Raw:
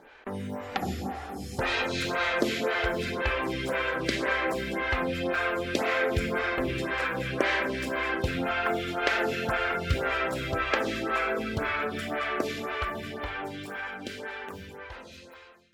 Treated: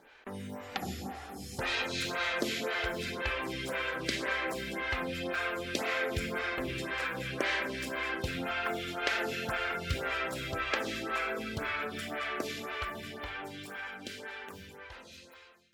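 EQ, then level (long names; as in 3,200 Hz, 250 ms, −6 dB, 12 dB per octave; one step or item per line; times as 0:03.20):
parametric band 160 Hz +2 dB 1.7 octaves
high-shelf EQ 2,200 Hz +8.5 dB
−8.0 dB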